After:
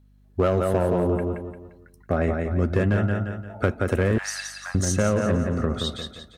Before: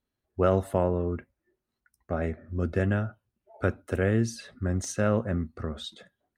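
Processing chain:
repeating echo 174 ms, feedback 38%, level −6 dB
in parallel at −8.5 dB: wave folding −20.5 dBFS
0:04.18–0:04.75: on the sum: Butterworth high-pass 800 Hz 48 dB per octave
downward compressor 4 to 1, threshold −24 dBFS, peak gain reduction 6.5 dB
mains hum 50 Hz, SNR 31 dB
level +6 dB

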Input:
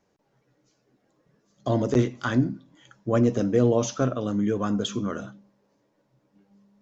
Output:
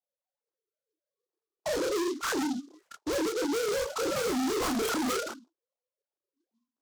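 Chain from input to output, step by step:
three sine waves on the formant tracks
downward expander −46 dBFS
low-pass filter 3,000 Hz 6 dB per octave
flat-topped bell 690 Hz +10 dB 2.8 octaves
in parallel at −2 dB: downward compressor, threshold −30 dBFS, peak gain reduction 24.5 dB
0:04.16–0:05.14: on the sum: mid-hump overdrive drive 25 dB, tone 1,700 Hz, clips at −3 dBFS
hard clipping −21 dBFS, distortion −4 dB
multi-voice chorus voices 4, 1.5 Hz, delay 29 ms, depth 3 ms
soft clipping −26 dBFS, distortion −11 dB
short delay modulated by noise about 4,600 Hz, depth 0.065 ms

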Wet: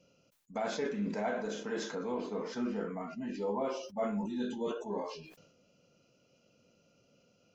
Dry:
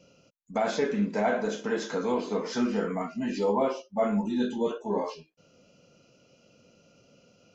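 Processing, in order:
0:01.95–0:03.65: high-shelf EQ 3,000 Hz −8.5 dB
level that may fall only so fast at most 60 dB per second
level −8.5 dB

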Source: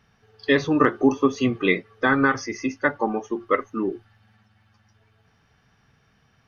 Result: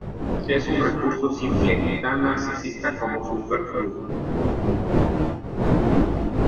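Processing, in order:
wind on the microphone 350 Hz −22 dBFS
noise gate with hold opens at −23 dBFS
reverb whose tail is shaped and stops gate 290 ms rising, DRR 3 dB
micro pitch shift up and down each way 11 cents

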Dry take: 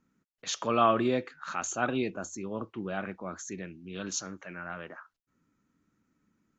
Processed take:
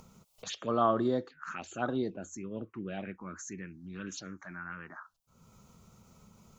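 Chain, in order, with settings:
phaser swept by the level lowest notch 290 Hz, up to 2,500 Hz, full sweep at −26.5 dBFS
upward compression, threshold −37 dBFS
level −1.5 dB

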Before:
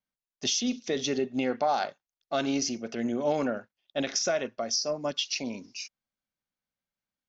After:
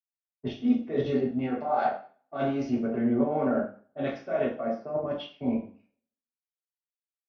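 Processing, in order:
low-pass filter 1,400 Hz 12 dB per octave
low-pass that shuts in the quiet parts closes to 610 Hz, open at −24.5 dBFS
output level in coarse steps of 19 dB
single-tap delay 163 ms −24 dB
coupled-rooms reverb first 0.52 s, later 1.5 s, from −25 dB, DRR −6.5 dB
multiband upward and downward expander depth 100%
level +5 dB

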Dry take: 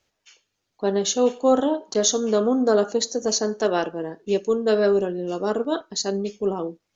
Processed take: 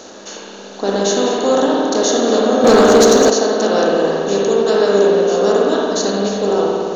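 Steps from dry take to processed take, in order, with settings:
compressor on every frequency bin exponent 0.4
spring reverb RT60 2.6 s, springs 55 ms, chirp 35 ms, DRR −3.5 dB
0:02.64–0:03.30: leveller curve on the samples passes 2
level −2 dB

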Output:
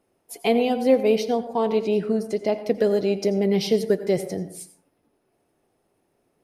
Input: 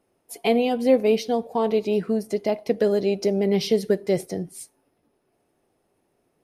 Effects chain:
0:01.30–0:02.57: low-pass filter 11,000 Hz 12 dB per octave
dense smooth reverb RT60 0.51 s, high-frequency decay 0.45×, pre-delay 75 ms, DRR 11.5 dB

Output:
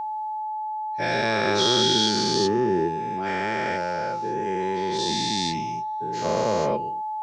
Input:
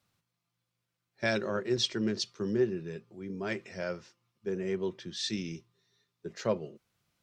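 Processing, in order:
every bin's largest magnitude spread in time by 480 ms
steady tone 860 Hz −27 dBFS

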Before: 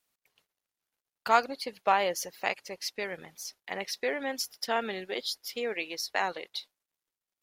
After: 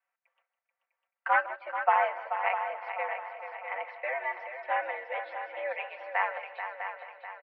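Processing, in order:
wavefolder on the positive side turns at −17 dBFS
comb filter 4.8 ms, depth 77%
echo machine with several playback heads 217 ms, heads second and third, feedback 49%, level −9 dB
single-sideband voice off tune +100 Hz 480–2,200 Hz
repeating echo 156 ms, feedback 28%, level −16 dB

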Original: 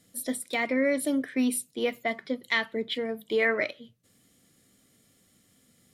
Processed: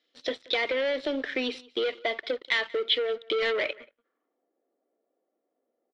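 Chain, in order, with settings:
elliptic band-pass filter 340–5,900 Hz, stop band 40 dB
dynamic equaliser 470 Hz, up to +7 dB, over −41 dBFS, Q 2.2
leveller curve on the samples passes 3
downward compressor, threshold −24 dBFS, peak gain reduction 9.5 dB
single-tap delay 181 ms −23.5 dB
low-pass filter sweep 3,600 Hz → 690 Hz, 0:03.56–0:04.47
level −3 dB

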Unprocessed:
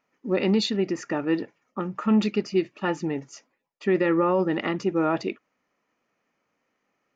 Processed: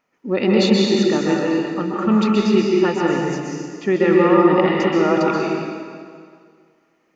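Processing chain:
dense smooth reverb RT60 2 s, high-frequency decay 0.9×, pre-delay 115 ms, DRR −3 dB
level +3.5 dB

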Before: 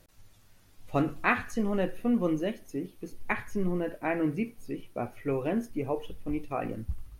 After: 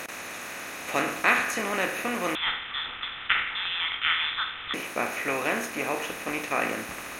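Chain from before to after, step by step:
compressor on every frequency bin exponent 0.4
high-pass filter 950 Hz 6 dB per octave
high-shelf EQ 3,000 Hz +9.5 dB
0:02.35–0:04.74: voice inversion scrambler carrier 3,800 Hz
level +1.5 dB

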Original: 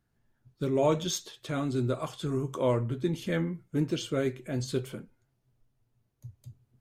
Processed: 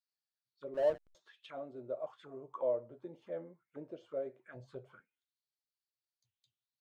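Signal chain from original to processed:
envelope filter 590–4,600 Hz, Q 5.7, down, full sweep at −27.5 dBFS
0:00.74–0:01.15: slack as between gear wheels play −34.5 dBFS
0:04.54–0:05.00: low shelf with overshoot 190 Hz +7.5 dB, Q 1.5
level −1 dB

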